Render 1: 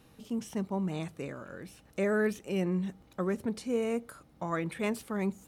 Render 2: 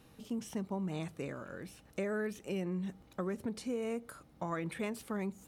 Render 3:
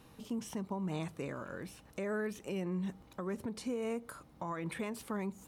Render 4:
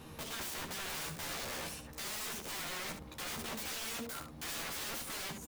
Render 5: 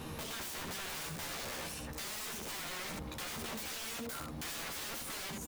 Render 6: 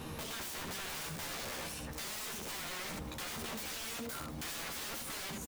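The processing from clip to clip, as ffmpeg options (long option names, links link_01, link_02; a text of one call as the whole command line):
ffmpeg -i in.wav -af "acompressor=threshold=-32dB:ratio=6,volume=-1dB" out.wav
ffmpeg -i in.wav -af "equalizer=frequency=1000:width_type=o:width=0.36:gain=5.5,alimiter=level_in=6.5dB:limit=-24dB:level=0:latency=1:release=176,volume=-6.5dB,volume=1.5dB" out.wav
ffmpeg -i in.wav -filter_complex "[0:a]aeval=exprs='(mod(168*val(0)+1,2)-1)/168':channel_layout=same,asplit=2[link_01][link_02];[link_02]aecho=0:1:13|73:0.668|0.422[link_03];[link_01][link_03]amix=inputs=2:normalize=0,volume=6.5dB" out.wav
ffmpeg -i in.wav -af "alimiter=level_in=17dB:limit=-24dB:level=0:latency=1:release=21,volume=-17dB,volume=7dB" out.wav
ffmpeg -i in.wav -af "aecho=1:1:727:0.141" out.wav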